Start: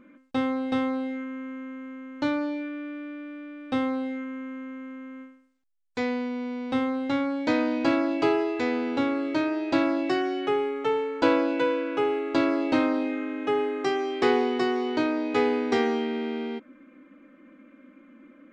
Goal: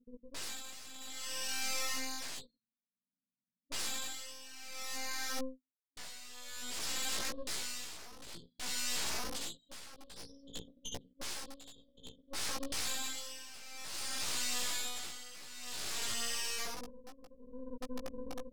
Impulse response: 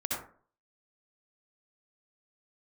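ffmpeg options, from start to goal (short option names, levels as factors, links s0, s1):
-filter_complex "[0:a]aecho=1:1:90:0.224,areverse,acompressor=mode=upward:threshold=0.00794:ratio=2.5,areverse,highpass=f=160:w=0.5412,highpass=f=160:w=1.3066[s0];[1:a]atrim=start_sample=2205[s1];[s0][s1]afir=irnorm=-1:irlink=0,afftfilt=real='re*(1-between(b*sr/4096,270,3100))':imag='im*(1-between(b*sr/4096,270,3100))':win_size=4096:overlap=0.75,acompressor=threshold=0.0447:ratio=3,anlmdn=0.251,aresample=11025,aeval=exprs='(mod(75*val(0)+1,2)-1)/75':c=same,aresample=44100,aeval=exprs='0.0237*(cos(1*acos(clip(val(0)/0.0237,-1,1)))-cos(1*PI/2))+0.0119*(cos(4*acos(clip(val(0)/0.0237,-1,1)))-cos(4*PI/2))+0.00299*(cos(8*acos(clip(val(0)/0.0237,-1,1)))-cos(8*PI/2))':c=same,tremolo=f=0.55:d=0.8,flanger=delay=15.5:depth=2.4:speed=0.9,adynamicequalizer=threshold=0.00126:dfrequency=4000:dqfactor=0.7:tfrequency=4000:tqfactor=0.7:attack=5:release=100:ratio=0.375:range=4:mode=boostabove:tftype=highshelf,volume=1.12"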